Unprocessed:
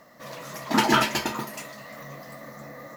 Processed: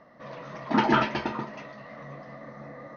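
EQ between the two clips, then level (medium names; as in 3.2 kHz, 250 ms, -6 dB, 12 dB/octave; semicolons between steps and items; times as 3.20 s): brick-wall FIR low-pass 6.5 kHz; distance through air 140 m; treble shelf 3.4 kHz -10.5 dB; 0.0 dB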